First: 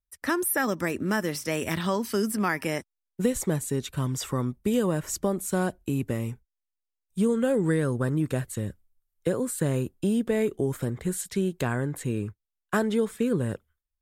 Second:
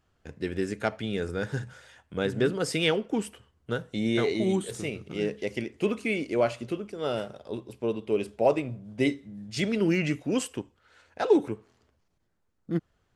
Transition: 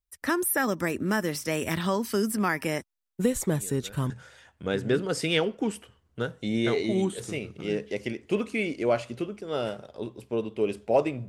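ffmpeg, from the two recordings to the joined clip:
ffmpeg -i cue0.wav -i cue1.wav -filter_complex "[1:a]asplit=2[link_01][link_02];[0:a]apad=whole_dur=11.28,atrim=end=11.28,atrim=end=4.102[link_03];[link_02]atrim=start=1.608:end=8.79[link_04];[link_01]atrim=start=0.95:end=1.61,asetpts=PTS-STARTPTS,volume=-17dB,afade=type=in:duration=0.004:curve=hsin,afade=type=out:start_time=0.656:duration=0.004:curve=hsin,adelay=3440[link_05];[link_03][link_04]acrossfade=duration=0.004:curve1=hsin:curve2=hsin[link_06];[link_06][link_05]amix=inputs=2:normalize=0" out.wav

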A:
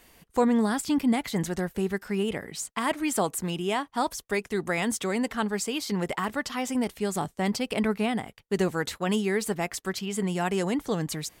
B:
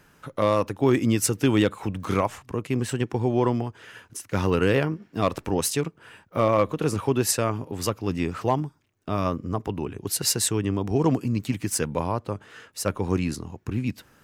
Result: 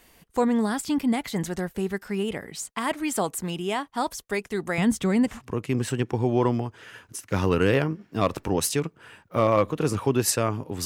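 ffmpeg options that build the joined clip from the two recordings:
ffmpeg -i cue0.wav -i cue1.wav -filter_complex "[0:a]asettb=1/sr,asplit=3[link_01][link_02][link_03];[link_01]atrim=end=4.784[link_04];[link_02]atrim=start=4.78:end=5.4,asetpts=PTS-STARTPTS,afade=type=in:duration=0.004:curve=qsin,afade=type=out:start_time=0.616:duration=0.004:curve=qsin,bass=frequency=250:gain=14,treble=frequency=4000:gain=-3[link_05];[link_03]atrim=start=5.396[link_06];[link_04][link_05]acrossfade=duration=0.004:curve1=hsin:curve2=qsin[link_07];[link_07][link_06]acrossfade=duration=0.004:curve1=qsin:curve2=hsin,apad=whole_dur=10.85,atrim=end=10.85,atrim=end=5.4,asetpts=PTS-STARTPTS[link_08];[1:a]atrim=start=2.25:end=7.86,asetpts=PTS-STARTPTS[link_09];[link_08][link_09]acrossfade=duration=0.16:curve1=tri:curve2=tri" out.wav

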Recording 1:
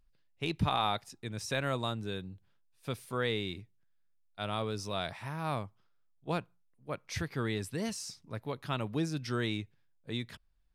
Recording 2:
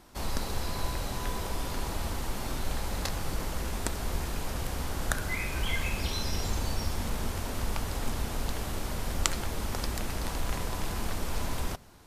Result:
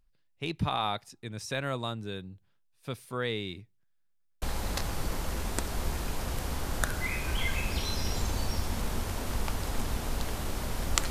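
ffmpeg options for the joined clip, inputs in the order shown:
ffmpeg -i cue0.wav -i cue1.wav -filter_complex "[0:a]apad=whole_dur=11.1,atrim=end=11.1,asplit=3[link_01][link_02][link_03];[link_01]atrim=end=4.202[link_04];[link_02]atrim=start=4.088:end=4.202[link_05];[link_03]atrim=start=4.088:end=4.202[link_06];[1:a]atrim=start=2.698:end=9.38[link_07];[link_04][link_05]acrossfade=duration=0.004:curve1=hsin:curve2=hsin[link_08];[link_08][link_06]acrossfade=duration=0.004:curve1=hsin:curve2=hsin[link_09];[link_09][link_07]acrossfade=duration=0.004:curve1=hsin:curve2=hsin" out.wav

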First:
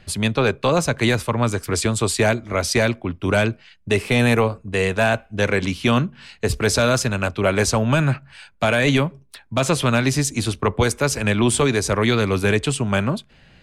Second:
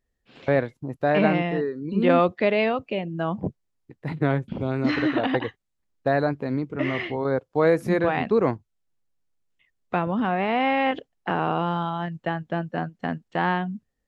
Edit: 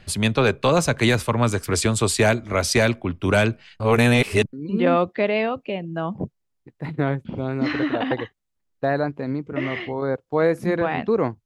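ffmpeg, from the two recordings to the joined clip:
ffmpeg -i cue0.wav -i cue1.wav -filter_complex "[0:a]apad=whole_dur=11.45,atrim=end=11.45,asplit=2[link_01][link_02];[link_01]atrim=end=3.802[link_03];[link_02]atrim=start=3.798:end=4.532,asetpts=PTS-STARTPTS,areverse[link_04];[1:a]atrim=start=1.758:end=8.68[link_05];[link_03][link_04]acrossfade=duration=0.004:curve1=hsin:curve2=hsin[link_06];[link_06][link_05]acrossfade=duration=0.004:curve1=hsin:curve2=hsin" out.wav

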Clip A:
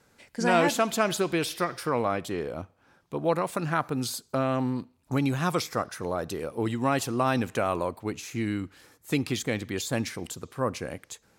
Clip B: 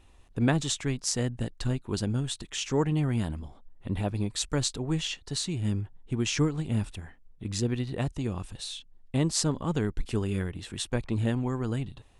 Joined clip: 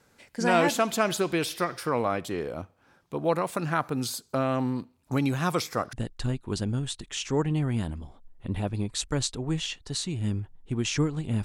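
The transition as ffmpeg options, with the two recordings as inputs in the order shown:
ffmpeg -i cue0.wav -i cue1.wav -filter_complex "[0:a]apad=whole_dur=11.44,atrim=end=11.44,atrim=end=5.932[link_01];[1:a]atrim=start=1.338:end=6.85[link_02];[link_01][link_02]acrossfade=duration=0.004:curve1=hsin:curve2=hsin" out.wav

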